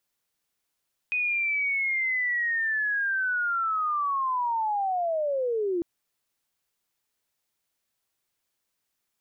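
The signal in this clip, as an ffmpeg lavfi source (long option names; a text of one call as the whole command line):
ffmpeg -f lavfi -i "aevalsrc='pow(10,(-23.5-0.5*t/4.7)/20)*sin(2*PI*(2500*t-2170*t*t/(2*4.7)))':duration=4.7:sample_rate=44100" out.wav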